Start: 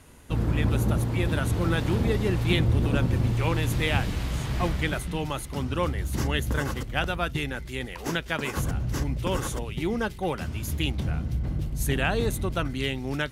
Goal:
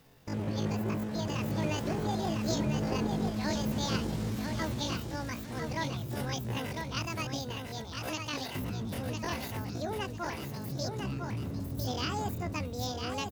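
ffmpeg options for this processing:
-af "asetrate=80880,aresample=44100,atempo=0.545254,aecho=1:1:1002|2004|3006:0.562|0.124|0.0272,volume=-8.5dB"

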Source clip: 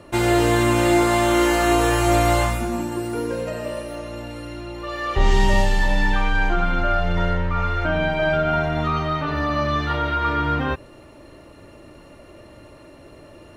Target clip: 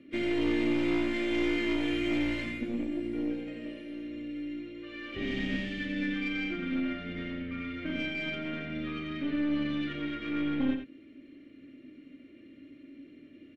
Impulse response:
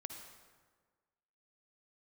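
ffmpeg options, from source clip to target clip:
-filter_complex "[0:a]asplit=2[a][b];[b]asetrate=58866,aresample=44100,atempo=0.749154,volume=-16dB[c];[a][c]amix=inputs=2:normalize=0,asplit=3[d][e][f];[d]bandpass=f=270:t=q:w=8,volume=0dB[g];[e]bandpass=f=2.29k:t=q:w=8,volume=-6dB[h];[f]bandpass=f=3.01k:t=q:w=8,volume=-9dB[i];[g][h][i]amix=inputs=3:normalize=0,aeval=exprs='0.112*(cos(1*acos(clip(val(0)/0.112,-1,1)))-cos(1*PI/2))+0.0112*(cos(5*acos(clip(val(0)/0.112,-1,1)))-cos(5*PI/2))+0.01*(cos(6*acos(clip(val(0)/0.112,-1,1)))-cos(6*PI/2))':c=same,asplit=2[j][k];[k]adynamicsmooth=sensitivity=3.5:basefreq=4.2k,volume=-2.5dB[l];[j][l]amix=inputs=2:normalize=0,aecho=1:1:88:0.422,volume=-4.5dB"

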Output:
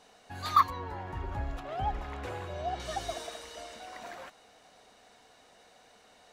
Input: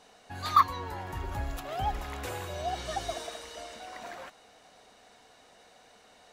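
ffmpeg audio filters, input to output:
-filter_complex "[0:a]asettb=1/sr,asplit=3[a][b][c];[a]atrim=end=0.704[d];[b]atrim=start=0.7:end=2.8,asetpts=PTS-STARTPTS,afade=t=in:d=0.004:c=qsin,afade=t=out:st=2.096:d=0.004:c=qsin,aemphasis=mode=reproduction:type=75fm[e];[c]atrim=start=2.796[f];[d][e]acrossfade=d=0.004:c1=hsin:c2=qsin[g];[g][f]acrossfade=d=0.004:c1=qsin:c2=hsin,volume=-1.5dB"

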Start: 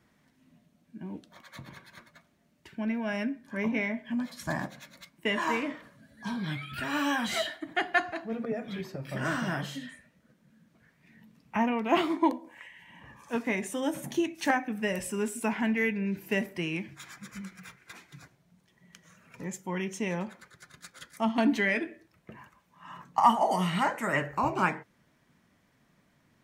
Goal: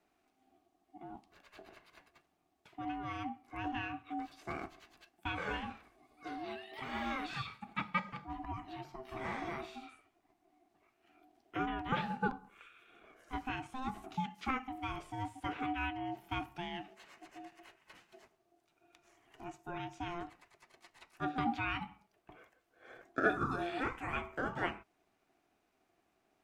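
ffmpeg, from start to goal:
-filter_complex "[0:a]acrossover=split=4300[a][b];[b]acompressor=threshold=-59dB:ratio=4:attack=1:release=60[c];[a][c]amix=inputs=2:normalize=0,aeval=exprs='val(0)*sin(2*PI*520*n/s)':c=same,volume=-6.5dB"

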